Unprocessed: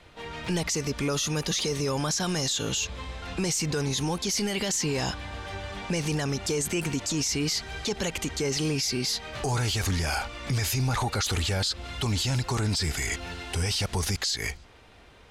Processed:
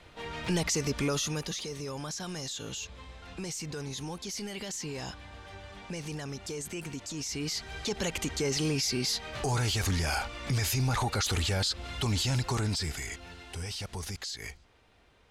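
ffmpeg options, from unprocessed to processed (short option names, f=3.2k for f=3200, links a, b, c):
-af "volume=7dB,afade=t=out:st=1:d=0.61:silence=0.354813,afade=t=in:st=7.14:d=0.97:silence=0.398107,afade=t=out:st=12.49:d=0.66:silence=0.398107"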